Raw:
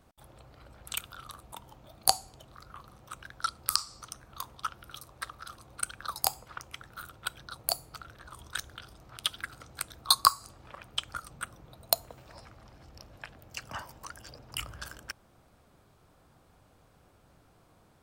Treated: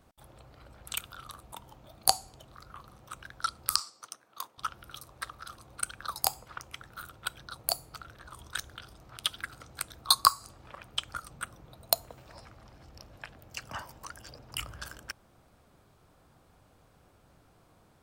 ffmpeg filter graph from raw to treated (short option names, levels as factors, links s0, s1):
-filter_complex "[0:a]asettb=1/sr,asplit=3[s0][s1][s2];[s0]atrim=end=3.804[s3];[s1]atrim=start=3.8:end=4.58,asetpts=PTS-STARTPTS,afade=t=in:d=0.004:c=qsin,afade=t=out:st=0.776:d=0.004:c=qsin,highpass=310,agate=range=0.447:threshold=0.00316:ratio=16:release=100:detection=peak[s4];[s2]atrim=start=4.576[s5];[s3][s4]acrossfade=d=0.004:c1=hsin:c2=qsin[s6];[s6][s5]acrossfade=d=0.004:c1=qsin:c2=hsin"